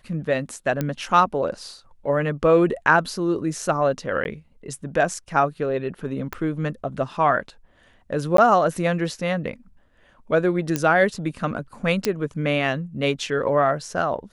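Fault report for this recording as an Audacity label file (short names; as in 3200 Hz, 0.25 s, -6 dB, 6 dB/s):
0.810000	0.810000	pop -11 dBFS
4.240000	4.250000	gap 11 ms
6.330000	6.330000	pop -16 dBFS
8.370000	8.380000	gap 13 ms
10.760000	10.760000	pop -8 dBFS
12.050000	12.050000	pop -7 dBFS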